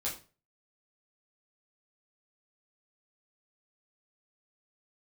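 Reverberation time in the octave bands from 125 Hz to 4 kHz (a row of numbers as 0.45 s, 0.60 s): 0.50 s, 0.35 s, 0.40 s, 0.35 s, 0.30 s, 0.30 s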